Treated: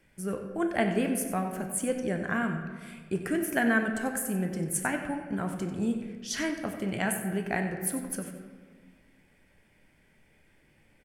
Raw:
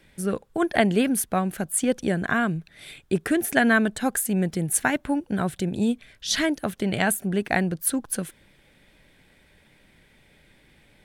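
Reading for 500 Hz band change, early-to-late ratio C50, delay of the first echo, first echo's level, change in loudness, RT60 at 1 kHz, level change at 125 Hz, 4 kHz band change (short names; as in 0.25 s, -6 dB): -5.5 dB, 6.0 dB, 93 ms, -12.0 dB, -6.0 dB, 1.5 s, -6.0 dB, -10.5 dB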